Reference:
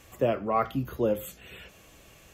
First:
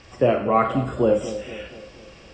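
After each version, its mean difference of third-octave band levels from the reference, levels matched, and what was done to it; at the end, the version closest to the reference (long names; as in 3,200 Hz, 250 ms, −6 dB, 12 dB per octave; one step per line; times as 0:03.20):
5.5 dB: hearing-aid frequency compression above 3,000 Hz 1.5 to 1
low-pass filter 6,100 Hz 24 dB per octave
on a send: echo with a time of its own for lows and highs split 840 Hz, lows 238 ms, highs 101 ms, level −12.5 dB
on the sum: four-comb reverb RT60 0.45 s, combs from 32 ms, DRR 7.5 dB
level +6.5 dB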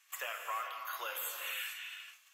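17.5 dB: noise gate −50 dBFS, range −21 dB
high-pass filter 1,200 Hz 24 dB per octave
downward compressor 10 to 1, threshold −48 dBFS, peak gain reduction 20.5 dB
reverb whose tail is shaped and stops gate 490 ms flat, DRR 2.5 dB
level +10.5 dB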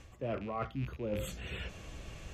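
8.5 dB: loose part that buzzes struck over −39 dBFS, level −31 dBFS
low-pass filter 6,700 Hz 12 dB per octave
low-shelf EQ 140 Hz +12 dB
reversed playback
downward compressor 16 to 1, threshold −36 dBFS, peak gain reduction 19.5 dB
reversed playback
level +3 dB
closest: first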